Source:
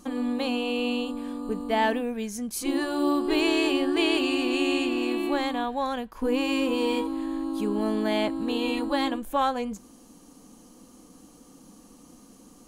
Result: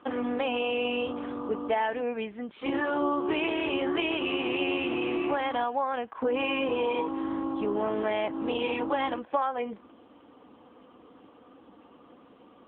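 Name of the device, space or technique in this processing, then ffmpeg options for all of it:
voicemail: -filter_complex "[0:a]asplit=3[s0][s1][s2];[s0]afade=t=out:st=3.17:d=0.02[s3];[s1]adynamicequalizer=threshold=0.00631:dfrequency=2600:dqfactor=5.2:tfrequency=2600:tqfactor=5.2:attack=5:release=100:ratio=0.375:range=2:mode=cutabove:tftype=bell,afade=t=in:st=3.17:d=0.02,afade=t=out:st=3.6:d=0.02[s4];[s2]afade=t=in:st=3.6:d=0.02[s5];[s3][s4][s5]amix=inputs=3:normalize=0,highpass=440,lowpass=3000,acompressor=threshold=0.0316:ratio=8,volume=2.24" -ar 8000 -c:a libopencore_amrnb -b:a 6700

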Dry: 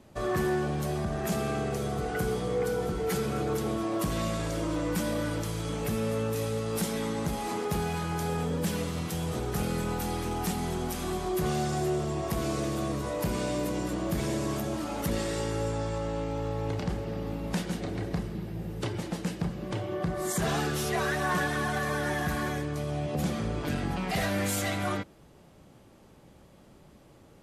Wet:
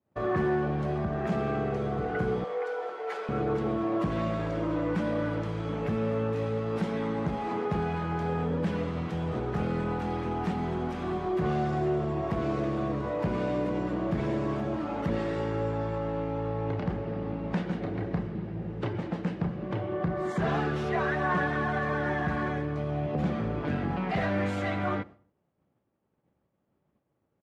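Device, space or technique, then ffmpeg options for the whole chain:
hearing-loss simulation: -filter_complex "[0:a]lowpass=2100,agate=range=0.0224:threshold=0.00891:ratio=3:detection=peak,highpass=73,asettb=1/sr,asplit=3[s0][s1][s2];[s0]atrim=end=2.444[s3];[s1]atrim=start=2.44:end=3.29,asetpts=PTS-STARTPTS,afade=t=in:d=0.004:c=qsin,afade=t=out:st=0.846:d=0.004:c=qsin,highpass=f=520:w=0.5412,highpass=f=520:w=1.3066[s4];[s2]atrim=start=3.286[s5];[s3][s4]acrossfade=d=0.004:c1=hsin:c2=qsin[s6];[s6][s5]acrossfade=d=0.004:c1=qsin:c2=hsin,asplit=2[s7][s8];[s8]adelay=69,lowpass=f=2000:p=1,volume=0.0708,asplit=2[s9][s10];[s10]adelay=69,lowpass=f=2000:p=1,volume=0.54,asplit=2[s11][s12];[s12]adelay=69,lowpass=f=2000:p=1,volume=0.54,asplit=2[s13][s14];[s14]adelay=69,lowpass=f=2000:p=1,volume=0.54[s15];[s7][s9][s11][s13][s15]amix=inputs=5:normalize=0,volume=1.19"

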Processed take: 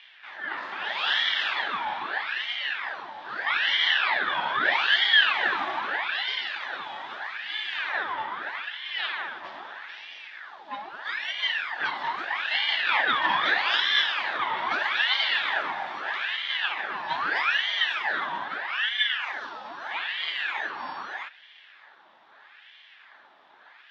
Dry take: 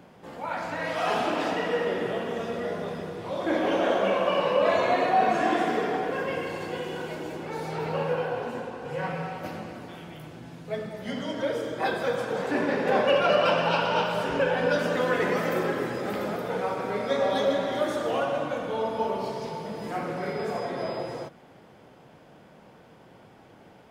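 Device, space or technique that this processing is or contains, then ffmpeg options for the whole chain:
voice changer toy: -af "aeval=exprs='val(0)*sin(2*PI*1500*n/s+1500*0.75/0.79*sin(2*PI*0.79*n/s))':c=same,highpass=470,equalizer=f=480:t=q:w=4:g=-7,equalizer=f=850:t=q:w=4:g=5,equalizer=f=1700:t=q:w=4:g=8,equalizer=f=3500:t=q:w=4:g=9,lowpass=f=4900:w=0.5412,lowpass=f=4900:w=1.3066,volume=0.891"

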